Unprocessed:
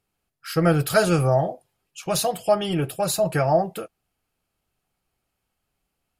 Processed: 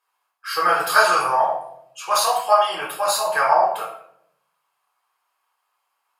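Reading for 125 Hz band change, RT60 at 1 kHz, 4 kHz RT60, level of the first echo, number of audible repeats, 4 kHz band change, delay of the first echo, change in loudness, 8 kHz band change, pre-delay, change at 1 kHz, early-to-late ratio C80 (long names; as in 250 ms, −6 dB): below −25 dB, 0.60 s, 0.50 s, no echo audible, no echo audible, +5.0 dB, no echo audible, +3.0 dB, +2.5 dB, 7 ms, +9.5 dB, 8.5 dB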